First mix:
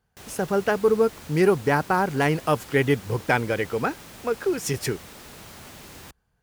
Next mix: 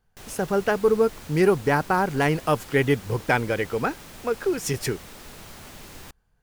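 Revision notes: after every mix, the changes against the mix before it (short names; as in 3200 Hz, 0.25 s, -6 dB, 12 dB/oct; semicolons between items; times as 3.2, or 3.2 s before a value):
master: remove HPF 51 Hz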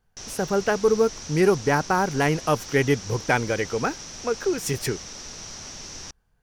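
background: add synth low-pass 5800 Hz, resonance Q 9.3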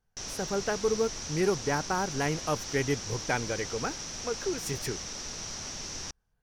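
speech -8.0 dB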